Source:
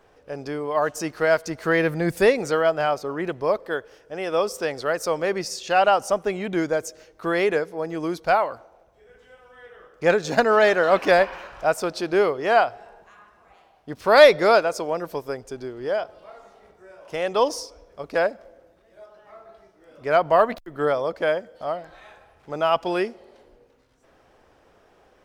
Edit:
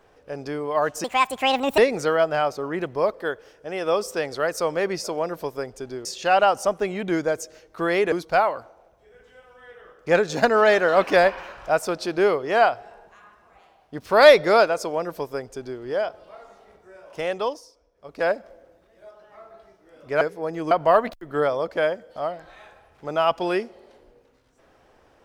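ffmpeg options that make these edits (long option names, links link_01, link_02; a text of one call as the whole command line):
ffmpeg -i in.wav -filter_complex "[0:a]asplit=10[link_01][link_02][link_03][link_04][link_05][link_06][link_07][link_08][link_09][link_10];[link_01]atrim=end=1.044[link_11];[link_02]atrim=start=1.04:end=2.24,asetpts=PTS-STARTPTS,asetrate=71442,aresample=44100[link_12];[link_03]atrim=start=2.236:end=5.502[link_13];[link_04]atrim=start=14.748:end=15.762[link_14];[link_05]atrim=start=5.498:end=7.572[link_15];[link_06]atrim=start=8.068:end=17.56,asetpts=PTS-STARTPTS,afade=type=out:start_time=9.132:duration=0.36:silence=0.158489[link_16];[link_07]atrim=start=17.56:end=17.9,asetpts=PTS-STARTPTS,volume=-16dB[link_17];[link_08]atrim=start=17.9:end=20.162,asetpts=PTS-STARTPTS,afade=type=in:duration=0.36:silence=0.158489[link_18];[link_09]atrim=start=7.568:end=8.072[link_19];[link_10]atrim=start=20.158[link_20];[link_11][link_12]acrossfade=duration=0.004:curve1=hsin:curve2=hsin[link_21];[link_21][link_13]acrossfade=duration=0.004:curve1=hsin:curve2=hsin[link_22];[link_22][link_14]acrossfade=duration=0.004:curve1=hsin:curve2=hsin[link_23];[link_23][link_15]acrossfade=duration=0.004:curve1=hsin:curve2=hsin[link_24];[link_16][link_17][link_18]concat=n=3:v=0:a=1[link_25];[link_24][link_25]acrossfade=duration=0.004:curve1=hsin:curve2=hsin[link_26];[link_26][link_19]acrossfade=duration=0.004:curve1=hsin:curve2=hsin[link_27];[link_27][link_20]acrossfade=duration=0.004:curve1=hsin:curve2=hsin" out.wav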